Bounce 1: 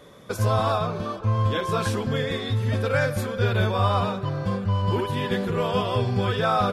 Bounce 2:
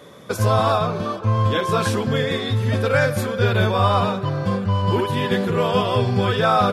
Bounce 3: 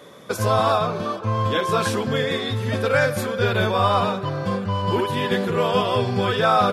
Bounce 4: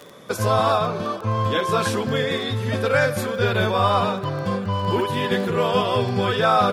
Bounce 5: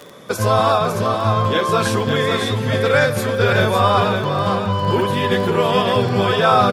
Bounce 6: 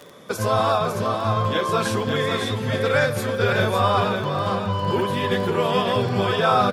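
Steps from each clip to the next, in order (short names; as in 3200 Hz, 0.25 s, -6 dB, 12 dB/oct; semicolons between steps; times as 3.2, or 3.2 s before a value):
HPF 90 Hz; gain +5 dB
low shelf 120 Hz -9.5 dB
crackle 11/s -29 dBFS
echo 0.555 s -6 dB; gain +3.5 dB
flange 1.3 Hz, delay 1 ms, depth 4.8 ms, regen -80%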